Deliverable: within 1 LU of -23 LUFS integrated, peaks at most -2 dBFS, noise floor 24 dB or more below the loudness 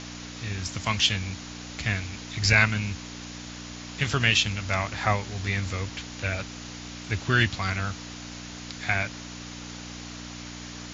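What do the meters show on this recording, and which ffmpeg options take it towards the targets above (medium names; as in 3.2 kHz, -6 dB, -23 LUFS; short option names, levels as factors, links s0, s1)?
hum 60 Hz; highest harmonic 300 Hz; hum level -39 dBFS; noise floor -40 dBFS; noise floor target -51 dBFS; loudness -26.5 LUFS; peak level -6.0 dBFS; loudness target -23.0 LUFS
-> -af "bandreject=f=60:t=h:w=4,bandreject=f=120:t=h:w=4,bandreject=f=180:t=h:w=4,bandreject=f=240:t=h:w=4,bandreject=f=300:t=h:w=4"
-af "afftdn=nr=11:nf=-40"
-af "volume=1.5"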